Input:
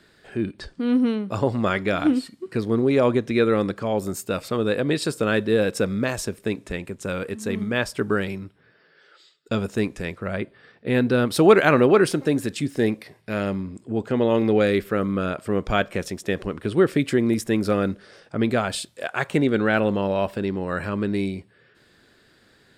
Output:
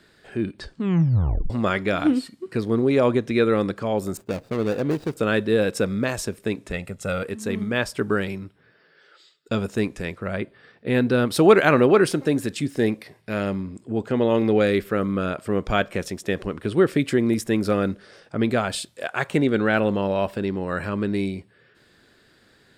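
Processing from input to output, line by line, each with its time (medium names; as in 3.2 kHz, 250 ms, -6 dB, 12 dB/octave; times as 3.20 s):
0.73 s: tape stop 0.77 s
4.17–5.17 s: median filter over 41 samples
6.73–7.23 s: comb 1.5 ms, depth 64%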